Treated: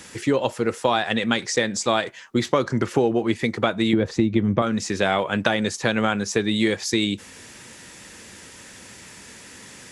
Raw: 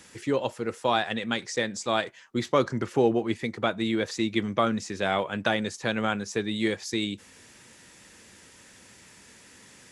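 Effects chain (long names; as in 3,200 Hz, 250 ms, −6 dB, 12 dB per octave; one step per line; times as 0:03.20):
0:03.93–0:04.62: spectral tilt −3.5 dB per octave
downward compressor 6 to 1, threshold −25 dBFS, peak gain reduction 10.5 dB
level +9 dB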